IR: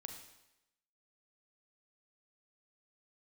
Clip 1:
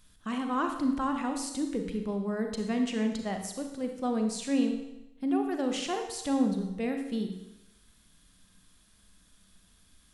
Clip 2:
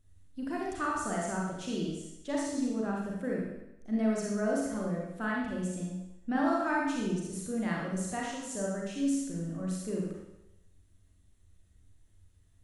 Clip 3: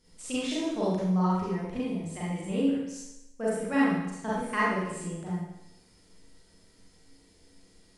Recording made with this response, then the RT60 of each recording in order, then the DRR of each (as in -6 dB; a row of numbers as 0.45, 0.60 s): 1; 0.90, 0.90, 0.90 s; 4.0, -3.5, -9.0 dB